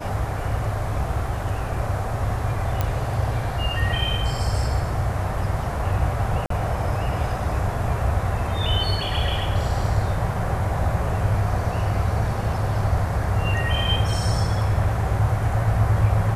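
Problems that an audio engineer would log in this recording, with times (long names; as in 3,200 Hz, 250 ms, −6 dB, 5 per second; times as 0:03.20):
0:02.81: click −9 dBFS
0:06.46–0:06.50: drop-out 43 ms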